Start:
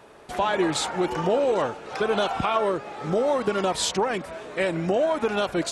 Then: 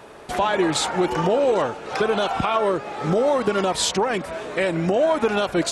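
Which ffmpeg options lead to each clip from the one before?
-af "alimiter=limit=-17dB:level=0:latency=1:release=363,volume=6.5dB"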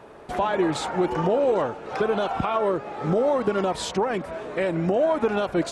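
-af "highshelf=f=2.2k:g=-10,volume=-1.5dB"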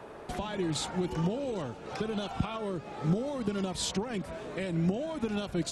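-filter_complex "[0:a]acrossover=split=240|3000[a][b][c];[b]acompressor=threshold=-42dB:ratio=3[d];[a][d][c]amix=inputs=3:normalize=0"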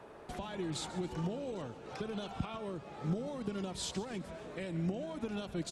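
-af "aecho=1:1:139|278|417|556:0.158|0.0777|0.0381|0.0186,volume=-6.5dB"

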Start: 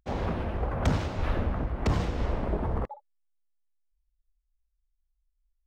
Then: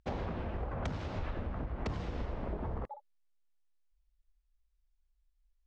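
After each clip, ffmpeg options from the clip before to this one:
-af "lowpass=5.8k,acompressor=threshold=-35dB:ratio=10,volume=1.5dB"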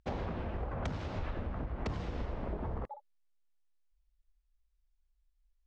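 -af anull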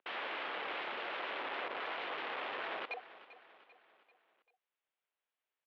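-af "aeval=exprs='(mod(94.4*val(0)+1,2)-1)/94.4':c=same,aecho=1:1:392|784|1176|1568:0.158|0.0792|0.0396|0.0198,highpass=f=500:t=q:w=0.5412,highpass=f=500:t=q:w=1.307,lowpass=f=3.4k:t=q:w=0.5176,lowpass=f=3.4k:t=q:w=0.7071,lowpass=f=3.4k:t=q:w=1.932,afreqshift=-100,volume=6dB"

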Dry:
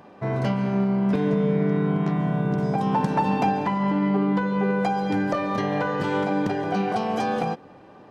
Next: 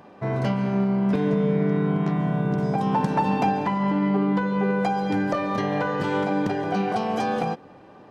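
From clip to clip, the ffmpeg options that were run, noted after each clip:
-af anull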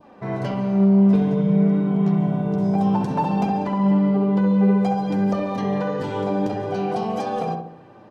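-filter_complex "[0:a]adynamicequalizer=threshold=0.00631:dfrequency=1800:dqfactor=1.3:tfrequency=1800:tqfactor=1.3:attack=5:release=100:ratio=0.375:range=3:mode=cutabove:tftype=bell,flanger=delay=3.1:depth=7.7:regen=40:speed=0.55:shape=triangular,asplit=2[a][b];[b]adelay=66,lowpass=f=1.4k:p=1,volume=-3dB,asplit=2[c][d];[d]adelay=66,lowpass=f=1.4k:p=1,volume=0.52,asplit=2[e][f];[f]adelay=66,lowpass=f=1.4k:p=1,volume=0.52,asplit=2[g][h];[h]adelay=66,lowpass=f=1.4k:p=1,volume=0.52,asplit=2[i][j];[j]adelay=66,lowpass=f=1.4k:p=1,volume=0.52,asplit=2[k][l];[l]adelay=66,lowpass=f=1.4k:p=1,volume=0.52,asplit=2[m][n];[n]adelay=66,lowpass=f=1.4k:p=1,volume=0.52[o];[a][c][e][g][i][k][m][o]amix=inputs=8:normalize=0,volume=2.5dB"

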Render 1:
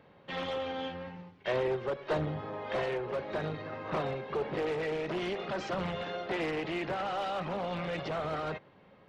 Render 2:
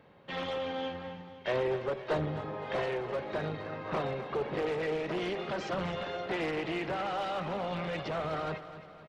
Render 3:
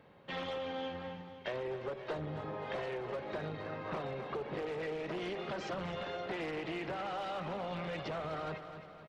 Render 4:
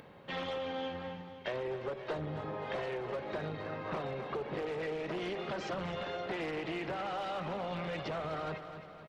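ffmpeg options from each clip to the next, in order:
-af "aecho=1:1:258|516|774|1032|1290:0.224|0.114|0.0582|0.0297|0.0151"
-af "acompressor=threshold=-34dB:ratio=6,volume=-1.5dB"
-af "acompressor=mode=upward:threshold=-50dB:ratio=2.5,volume=1.5dB"

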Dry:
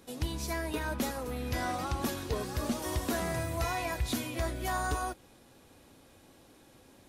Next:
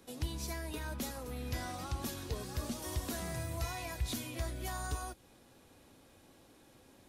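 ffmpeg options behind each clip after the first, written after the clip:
-filter_complex "[0:a]acrossover=split=180|3000[a][b][c];[b]acompressor=threshold=-43dB:ratio=2[d];[a][d][c]amix=inputs=3:normalize=0,volume=-3dB"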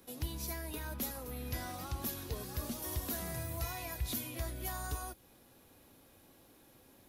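-af "aexciter=amount=4:drive=4.1:freq=11k,volume=-1.5dB"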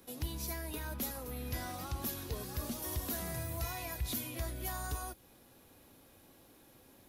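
-af "asoftclip=type=tanh:threshold=-26dB,volume=1dB"

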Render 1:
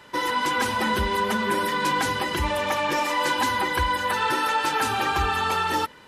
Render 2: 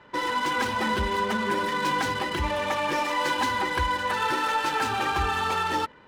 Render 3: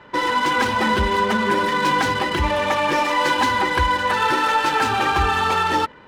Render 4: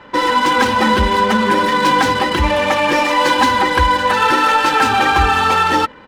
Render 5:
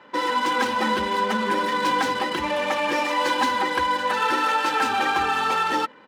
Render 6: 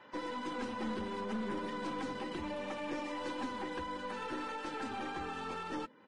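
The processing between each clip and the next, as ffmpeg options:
-af "adynamicsmooth=sensitivity=6.5:basefreq=2.3k,volume=-2dB"
-af "highshelf=f=6.8k:g=-4.5,volume=7dB"
-af "aecho=1:1:3.8:0.31,volume=5dB"
-af "highpass=200,volume=-8.5dB"
-filter_complex "[0:a]acrossover=split=420[a][b];[b]acompressor=threshold=-44dB:ratio=2[c];[a][c]amix=inputs=2:normalize=0,aeval=exprs='(tanh(17.8*val(0)+0.4)-tanh(0.4))/17.8':c=same,volume=-6dB" -ar 22050 -c:a libvorbis -b:a 32k

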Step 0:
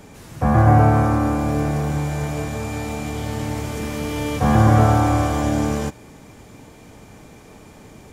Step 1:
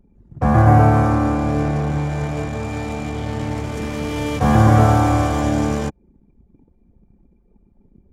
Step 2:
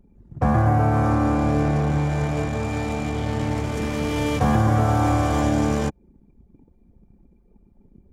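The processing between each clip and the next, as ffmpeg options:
-af "anlmdn=15.8,volume=1.5dB"
-af "acompressor=threshold=-15dB:ratio=6"

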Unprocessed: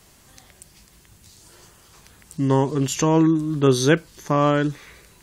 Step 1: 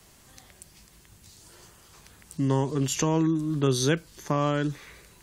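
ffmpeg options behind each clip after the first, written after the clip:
-filter_complex "[0:a]acrossover=split=140|3000[a][b][c];[b]acompressor=threshold=-23dB:ratio=2[d];[a][d][c]amix=inputs=3:normalize=0,volume=-2.5dB"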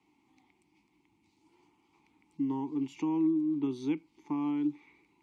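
-filter_complex "[0:a]asplit=3[a][b][c];[a]bandpass=f=300:t=q:w=8,volume=0dB[d];[b]bandpass=f=870:t=q:w=8,volume=-6dB[e];[c]bandpass=f=2.24k:t=q:w=8,volume=-9dB[f];[d][e][f]amix=inputs=3:normalize=0,volume=1.5dB"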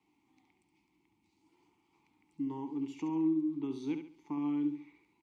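-af "aecho=1:1:69|138|207|276:0.398|0.135|0.046|0.0156,volume=-4.5dB"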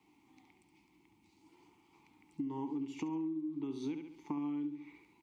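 -af "acompressor=threshold=-41dB:ratio=16,volume=6dB"

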